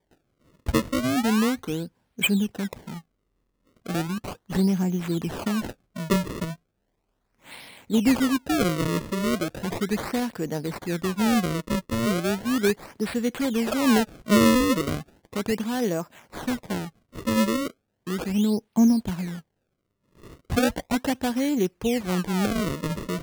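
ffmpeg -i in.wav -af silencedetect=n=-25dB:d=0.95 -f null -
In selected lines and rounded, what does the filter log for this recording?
silence_start: 2.73
silence_end: 3.89 | silence_duration: 1.16
silence_start: 6.44
silence_end: 7.92 | silence_duration: 1.47
silence_start: 19.25
silence_end: 20.52 | silence_duration: 1.27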